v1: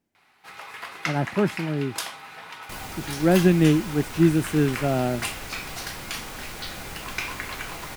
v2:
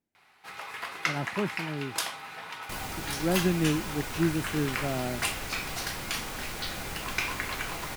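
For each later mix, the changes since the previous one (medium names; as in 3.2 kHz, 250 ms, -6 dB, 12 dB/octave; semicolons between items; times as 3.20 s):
speech -8.5 dB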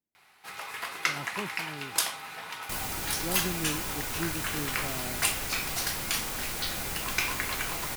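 speech -8.5 dB; master: add treble shelf 6.2 kHz +9 dB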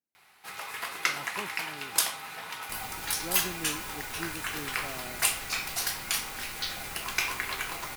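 speech: add bass shelf 260 Hz -11 dB; first sound: add treble shelf 9.4 kHz +4.5 dB; second sound -7.5 dB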